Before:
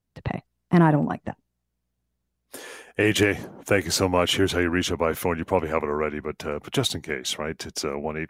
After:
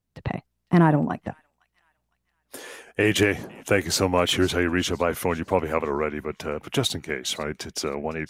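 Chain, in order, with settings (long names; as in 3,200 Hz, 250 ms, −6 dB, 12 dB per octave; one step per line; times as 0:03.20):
delay with a high-pass on its return 508 ms, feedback 35%, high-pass 2,400 Hz, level −21 dB
wow of a warped record 78 rpm, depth 100 cents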